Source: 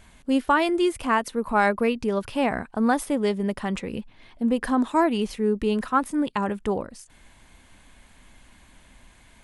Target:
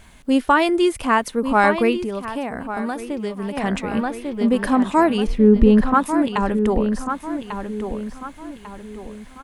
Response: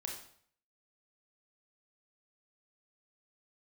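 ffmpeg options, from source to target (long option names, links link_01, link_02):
-filter_complex "[0:a]asettb=1/sr,asplit=3[link_01][link_02][link_03];[link_01]atrim=end=5.274[link_04];[link_02]atrim=start=5.27:end=5.94,asetpts=PTS-STARTPTS,afade=type=in:duration=0.004:curve=qsin,afade=type=out:start_time=0.666:duration=0.004:curve=qsin,aemphasis=mode=reproduction:type=riaa[link_05];[link_03]atrim=start=5.936[link_06];[link_04][link_05]acrossfade=duration=0.004:curve1=hsin:curve2=qsin[link_07];[link_07][link_06]acrossfade=duration=0.004:curve1=qsin:curve2=hsin,asplit=2[link_08][link_09];[link_09]adelay=1145,lowpass=frequency=5000:poles=1,volume=-8dB,asplit=2[link_10][link_11];[link_11]adelay=1145,lowpass=frequency=5000:poles=1,volume=0.38,asplit=2[link_12][link_13];[link_13]adelay=1145,lowpass=frequency=5000:poles=1,volume=0.38,asplit=2[link_14][link_15];[link_15]adelay=1145,lowpass=frequency=5000:poles=1,volume=0.38[link_16];[link_10][link_12][link_14][link_16]amix=inputs=4:normalize=0[link_17];[link_08][link_17]amix=inputs=2:normalize=0,asettb=1/sr,asplit=3[link_18][link_19][link_20];[link_18]atrim=end=1.964[link_21];[link_19]atrim=start=1.96:end=3.57,asetpts=PTS-STARTPTS,afade=type=in:duration=0.004:curve=qsin,afade=type=out:start_time=1.606:duration=0.004:curve=qsin,acrossover=split=2100|7800[link_22][link_23][link_24];[link_22]acompressor=threshold=-29dB:ratio=4[link_25];[link_23]acompressor=threshold=-49dB:ratio=4[link_26];[link_24]acompressor=threshold=-57dB:ratio=4[link_27];[link_25][link_26][link_27]amix=inputs=3:normalize=0[link_28];[link_20]atrim=start=3.566[link_29];[link_21][link_28]acrossfade=duration=0.004:curve1=hsin:curve2=qsin[link_30];[link_30][link_29]acrossfade=duration=0.004:curve1=qsin:curve2=hsin,acrusher=bits=11:mix=0:aa=0.000001,volume=4.5dB"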